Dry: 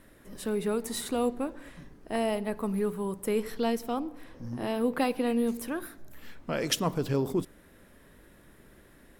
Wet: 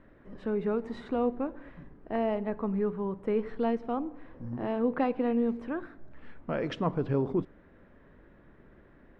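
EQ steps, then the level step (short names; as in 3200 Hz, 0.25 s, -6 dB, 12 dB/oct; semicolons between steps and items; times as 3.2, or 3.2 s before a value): LPF 1800 Hz 12 dB/oct; air absorption 63 m; 0.0 dB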